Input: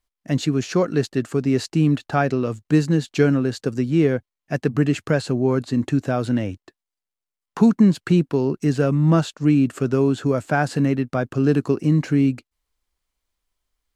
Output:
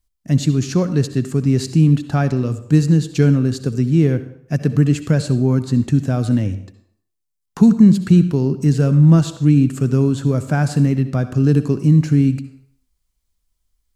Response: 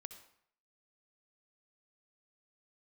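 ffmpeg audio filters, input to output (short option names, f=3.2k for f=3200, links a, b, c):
-filter_complex "[0:a]bass=f=250:g=13,treble=f=4k:g=9,asplit=2[a][b];[1:a]atrim=start_sample=2205[c];[b][c]afir=irnorm=-1:irlink=0,volume=11dB[d];[a][d]amix=inputs=2:normalize=0,volume=-12.5dB"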